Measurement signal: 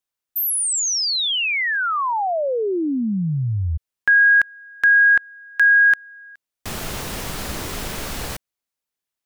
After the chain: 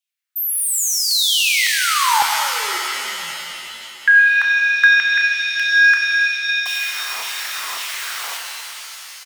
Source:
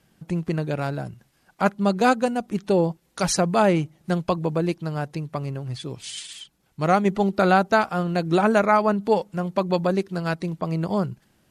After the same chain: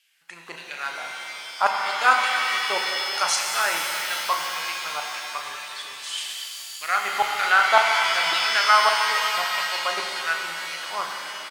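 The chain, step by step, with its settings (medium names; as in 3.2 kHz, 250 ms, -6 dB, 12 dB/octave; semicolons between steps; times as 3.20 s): doubling 35 ms -10.5 dB; LFO high-pass saw down 1.8 Hz 900–2900 Hz; pitch-shifted reverb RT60 3 s, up +7 st, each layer -2 dB, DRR 2 dB; trim -1 dB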